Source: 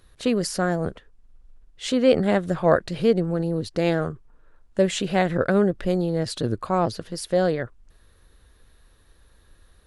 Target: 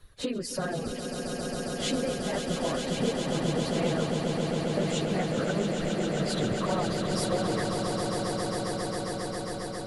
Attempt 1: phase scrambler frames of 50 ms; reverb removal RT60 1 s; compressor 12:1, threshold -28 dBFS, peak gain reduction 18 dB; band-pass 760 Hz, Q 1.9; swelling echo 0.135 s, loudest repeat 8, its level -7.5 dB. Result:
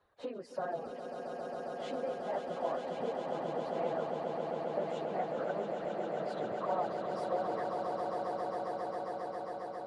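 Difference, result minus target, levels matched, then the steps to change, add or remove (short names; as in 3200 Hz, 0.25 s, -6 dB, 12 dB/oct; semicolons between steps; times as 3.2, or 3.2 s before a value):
1000 Hz band +6.0 dB
remove: band-pass 760 Hz, Q 1.9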